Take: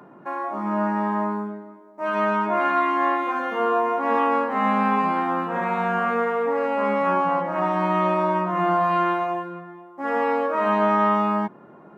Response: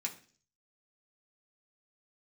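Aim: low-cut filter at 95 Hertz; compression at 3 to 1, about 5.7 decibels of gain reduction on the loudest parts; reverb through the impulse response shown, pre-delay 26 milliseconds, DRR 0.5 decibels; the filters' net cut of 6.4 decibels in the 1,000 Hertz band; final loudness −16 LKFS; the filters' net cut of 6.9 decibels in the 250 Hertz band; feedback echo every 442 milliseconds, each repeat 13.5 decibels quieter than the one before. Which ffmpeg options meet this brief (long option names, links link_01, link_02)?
-filter_complex "[0:a]highpass=95,equalizer=frequency=250:width_type=o:gain=-9,equalizer=frequency=1000:width_type=o:gain=-7.5,acompressor=threshold=-30dB:ratio=3,aecho=1:1:442|884:0.211|0.0444,asplit=2[link_01][link_02];[1:a]atrim=start_sample=2205,adelay=26[link_03];[link_02][link_03]afir=irnorm=-1:irlink=0,volume=-1dB[link_04];[link_01][link_04]amix=inputs=2:normalize=0,volume=14dB"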